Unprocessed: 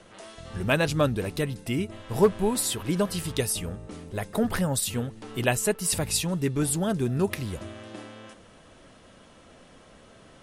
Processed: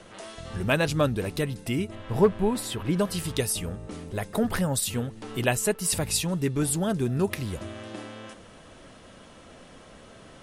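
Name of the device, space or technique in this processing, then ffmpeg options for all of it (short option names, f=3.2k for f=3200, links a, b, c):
parallel compression: -filter_complex "[0:a]asplit=2[a][b];[b]acompressor=threshold=-39dB:ratio=6,volume=-3.5dB[c];[a][c]amix=inputs=2:normalize=0,asettb=1/sr,asplit=3[d][e][f];[d]atrim=end=1.954[g];[e]atrim=start=1.95:end=2.99,asetpts=PTS-STARTPTS,afade=t=in:d=0.004:c=qsin,afade=t=out:st=1.036:d=0.004:c=qsin,bass=f=250:g=2,treble=f=4k:g=-9[h];[f]atrim=start=2.986[i];[g][h]acrossfade=d=0.004:c1=hsin:c2=qsin[j];[j][i]acrossfade=d=0.004:c1=qsin:c2=hsin,volume=-1dB"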